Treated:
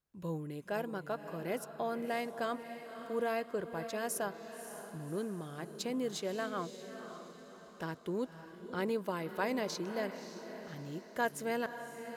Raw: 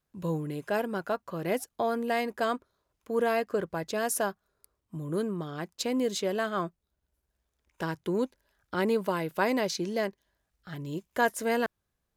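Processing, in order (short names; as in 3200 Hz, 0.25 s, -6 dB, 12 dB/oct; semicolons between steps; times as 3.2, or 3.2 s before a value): diffused feedback echo 0.568 s, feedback 46%, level -10 dB; gain -7.5 dB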